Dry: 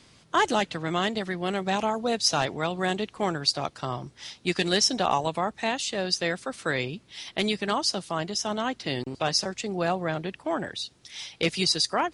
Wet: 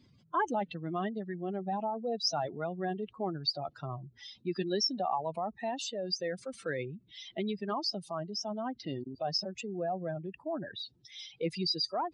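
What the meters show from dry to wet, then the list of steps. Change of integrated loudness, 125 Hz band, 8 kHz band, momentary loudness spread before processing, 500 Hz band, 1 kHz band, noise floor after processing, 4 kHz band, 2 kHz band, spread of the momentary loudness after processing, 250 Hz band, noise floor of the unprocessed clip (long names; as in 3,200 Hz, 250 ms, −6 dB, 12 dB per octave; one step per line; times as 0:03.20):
−8.0 dB, −7.0 dB, −14.0 dB, 9 LU, −6.5 dB, −7.0 dB, −66 dBFS, −8.5 dB, −13.5 dB, 10 LU, −6.5 dB, −59 dBFS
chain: expanding power law on the bin magnitudes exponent 2.4
level −7 dB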